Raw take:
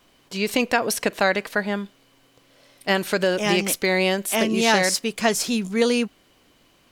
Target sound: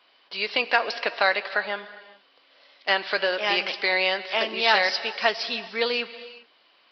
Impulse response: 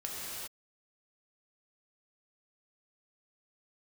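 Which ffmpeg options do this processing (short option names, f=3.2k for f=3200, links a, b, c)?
-filter_complex "[0:a]highpass=680,asplit=2[a][b];[1:a]atrim=start_sample=2205[c];[b][c]afir=irnorm=-1:irlink=0,volume=-14.5dB[d];[a][d]amix=inputs=2:normalize=0,aresample=11025,aresample=44100" -ar 44100 -c:a libvorbis -b:a 48k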